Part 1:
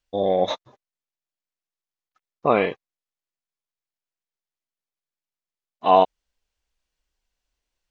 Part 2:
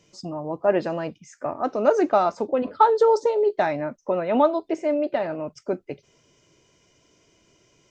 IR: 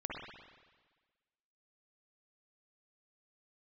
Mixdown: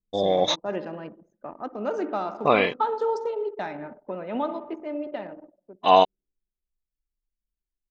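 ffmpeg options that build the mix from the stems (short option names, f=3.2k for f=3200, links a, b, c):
-filter_complex "[0:a]crystalizer=i=4.5:c=0,volume=-2dB[a];[1:a]equalizer=f=125:t=o:w=0.33:g=-11,equalizer=f=200:t=o:w=0.33:g=6,equalizer=f=630:t=o:w=0.33:g=-4,equalizer=f=3.15k:t=o:w=0.33:g=6,volume=-10.5dB,afade=t=out:st=5.2:d=0.29:silence=0.266073,asplit=2[b][c];[c]volume=-7dB[d];[2:a]atrim=start_sample=2205[e];[d][e]afir=irnorm=-1:irlink=0[f];[a][b][f]amix=inputs=3:normalize=0,anlmdn=0.398"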